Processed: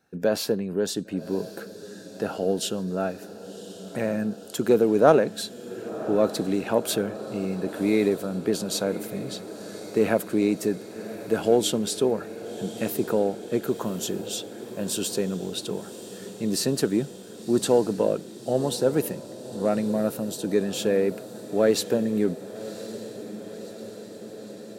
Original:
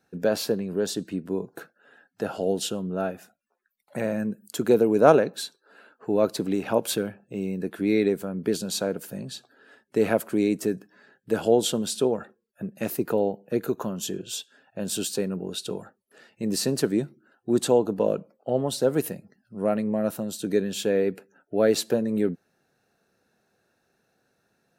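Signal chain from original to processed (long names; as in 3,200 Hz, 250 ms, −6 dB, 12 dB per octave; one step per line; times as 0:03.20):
in parallel at −8.5 dB: soft clipping −14.5 dBFS, distortion −14 dB
on the sum: feedback delay with all-pass diffusion 1,089 ms, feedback 70%, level −14.5 dB
level −2 dB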